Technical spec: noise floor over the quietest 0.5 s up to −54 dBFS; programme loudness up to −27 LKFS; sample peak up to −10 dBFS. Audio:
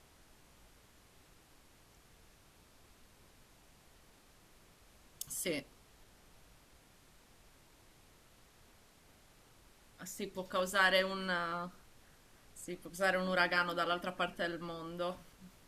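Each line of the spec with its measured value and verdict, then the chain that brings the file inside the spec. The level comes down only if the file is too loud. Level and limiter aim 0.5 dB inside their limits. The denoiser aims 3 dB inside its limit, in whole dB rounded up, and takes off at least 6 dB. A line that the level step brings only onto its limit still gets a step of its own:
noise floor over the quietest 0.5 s −64 dBFS: in spec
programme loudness −35.5 LKFS: in spec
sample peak −15.5 dBFS: in spec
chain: no processing needed

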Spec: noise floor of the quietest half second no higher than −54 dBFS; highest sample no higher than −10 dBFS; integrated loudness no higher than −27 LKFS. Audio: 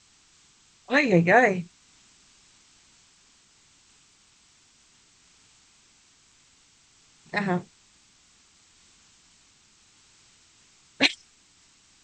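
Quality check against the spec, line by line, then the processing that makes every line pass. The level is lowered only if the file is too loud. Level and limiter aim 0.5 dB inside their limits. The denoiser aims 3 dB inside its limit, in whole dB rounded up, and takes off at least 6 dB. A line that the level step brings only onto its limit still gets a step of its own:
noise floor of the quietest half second −60 dBFS: in spec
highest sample −6.0 dBFS: out of spec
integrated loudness −23.0 LKFS: out of spec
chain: level −4.5 dB

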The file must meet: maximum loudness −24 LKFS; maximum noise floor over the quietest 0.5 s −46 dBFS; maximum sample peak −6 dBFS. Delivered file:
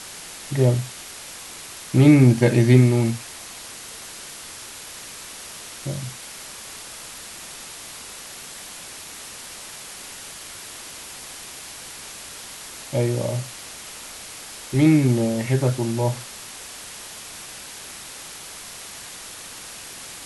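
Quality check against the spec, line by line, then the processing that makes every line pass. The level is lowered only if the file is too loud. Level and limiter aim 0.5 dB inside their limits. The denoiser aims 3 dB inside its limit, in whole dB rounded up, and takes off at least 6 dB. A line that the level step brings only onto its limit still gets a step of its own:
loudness −20.0 LKFS: out of spec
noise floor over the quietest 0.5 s −38 dBFS: out of spec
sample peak −2.0 dBFS: out of spec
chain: broadband denoise 7 dB, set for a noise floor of −38 dBFS
level −4.5 dB

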